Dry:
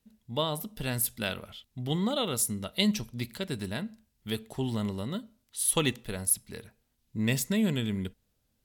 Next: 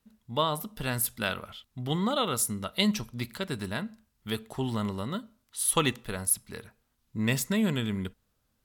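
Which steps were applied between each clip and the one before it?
parametric band 1,200 Hz +8 dB 0.95 octaves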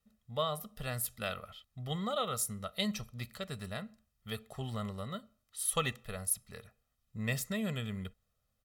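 comb filter 1.6 ms, depth 72%
level −8.5 dB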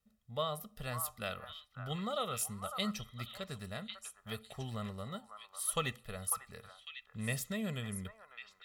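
echo through a band-pass that steps 549 ms, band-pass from 1,100 Hz, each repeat 1.4 octaves, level −4 dB
level −2.5 dB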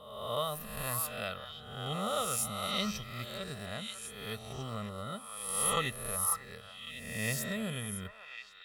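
peak hold with a rise ahead of every peak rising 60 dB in 1.05 s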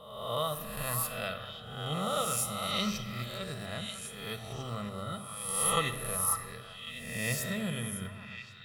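rectangular room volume 1,200 cubic metres, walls mixed, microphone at 0.7 metres
level +1 dB

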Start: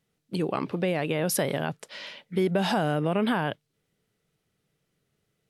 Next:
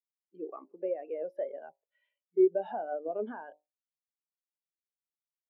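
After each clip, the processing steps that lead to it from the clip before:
three-way crossover with the lows and the highs turned down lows −23 dB, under 280 Hz, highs −15 dB, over 3,700 Hz
hum removal 50.1 Hz, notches 21
every bin expanded away from the loudest bin 2.5 to 1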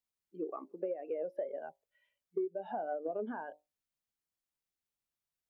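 low-shelf EQ 170 Hz +10 dB
downward compressor 10 to 1, threshold −35 dBFS, peak gain reduction 18 dB
level +2 dB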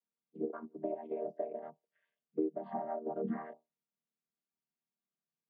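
channel vocoder with a chord as carrier major triad, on D#3
level +1 dB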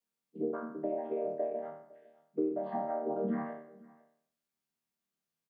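peak hold with a decay on every bin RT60 0.62 s
in parallel at −3 dB: brickwall limiter −29.5 dBFS, peak gain reduction 8.5 dB
on the sum: single-tap delay 507 ms −23 dB
level −2 dB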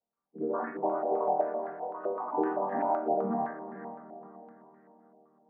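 delay with pitch and tempo change per echo 163 ms, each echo +4 semitones, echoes 2, each echo −6 dB
feedback delay with all-pass diffusion 453 ms, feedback 43%, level −11 dB
low-pass on a step sequencer 7.8 Hz 720–1,700 Hz

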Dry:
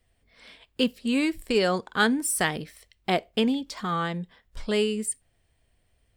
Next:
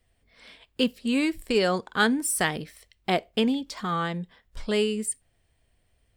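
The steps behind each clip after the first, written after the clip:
no processing that can be heard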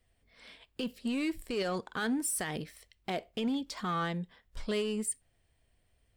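in parallel at −3.5 dB: hard clipping −26 dBFS, distortion −7 dB
on the sum: brickwall limiter −17.5 dBFS, peak gain reduction 9 dB
level −8 dB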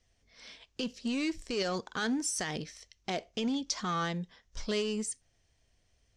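low-pass with resonance 6,100 Hz, resonance Q 5.7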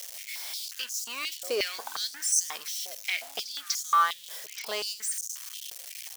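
spike at every zero crossing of −33 dBFS
echo ahead of the sound 245 ms −23 dB
high-pass on a step sequencer 5.6 Hz 550–6,500 Hz
level +2 dB

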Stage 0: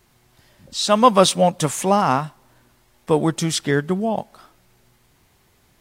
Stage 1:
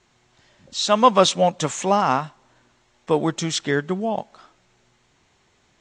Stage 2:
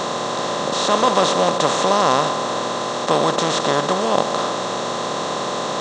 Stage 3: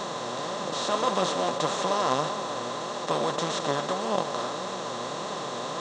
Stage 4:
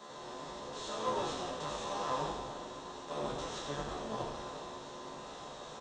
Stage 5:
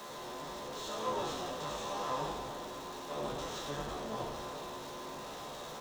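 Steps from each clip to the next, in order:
elliptic low-pass filter 7,300 Hz, stop band 80 dB; low-shelf EQ 160 Hz −7.5 dB; notch filter 4,800 Hz, Q 16
compressor on every frequency bin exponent 0.2; level −6.5 dB
flanger 1.7 Hz, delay 4.5 ms, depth 4.2 ms, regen +45%; level −5.5 dB
tuned comb filter 73 Hz, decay 0.35 s, harmonics all, mix 100%; echo with shifted repeats 88 ms, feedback 51%, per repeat −99 Hz, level −4.5 dB; multiband upward and downward expander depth 40%; level −4.5 dB
converter with a step at zero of −43.5 dBFS; level −2 dB

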